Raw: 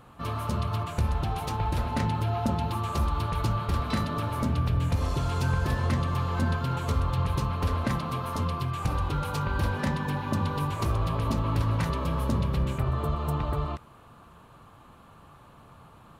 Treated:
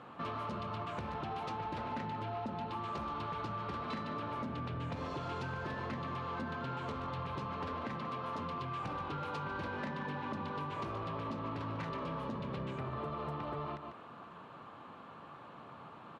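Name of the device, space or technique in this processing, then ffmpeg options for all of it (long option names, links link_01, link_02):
AM radio: -filter_complex "[0:a]highpass=200,lowpass=3400,asplit=2[link_01][link_02];[link_02]adelay=145.8,volume=-12dB,highshelf=frequency=4000:gain=-3.28[link_03];[link_01][link_03]amix=inputs=2:normalize=0,acompressor=threshold=-38dB:ratio=6,asoftclip=type=tanh:threshold=-33.5dB,volume=2.5dB"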